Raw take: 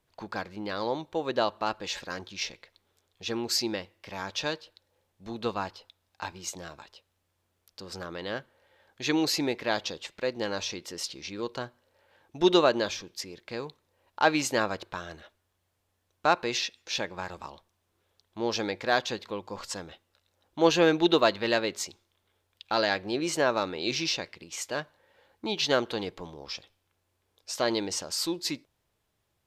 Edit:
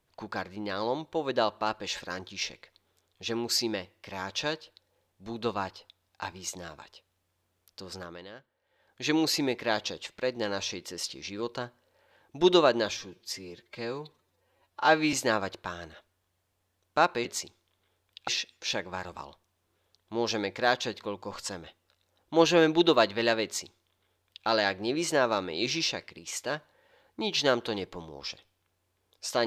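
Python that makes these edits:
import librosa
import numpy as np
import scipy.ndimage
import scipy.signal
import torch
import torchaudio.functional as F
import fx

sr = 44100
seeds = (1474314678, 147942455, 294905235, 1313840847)

y = fx.edit(x, sr, fx.fade_down_up(start_s=7.87, length_s=1.21, db=-13.5, fade_s=0.45),
    fx.stretch_span(start_s=12.97, length_s=1.44, factor=1.5),
    fx.duplicate(start_s=21.69, length_s=1.03, to_s=16.53), tone=tone)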